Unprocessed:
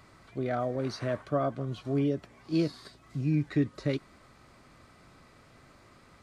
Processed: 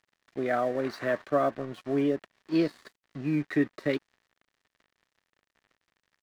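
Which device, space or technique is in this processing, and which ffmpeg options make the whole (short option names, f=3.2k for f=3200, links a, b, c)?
pocket radio on a weak battery: -af "highpass=260,lowpass=3.7k,aeval=exprs='sgn(val(0))*max(abs(val(0))-0.00237,0)':c=same,equalizer=f=1.8k:t=o:w=0.28:g=7.5,volume=4.5dB"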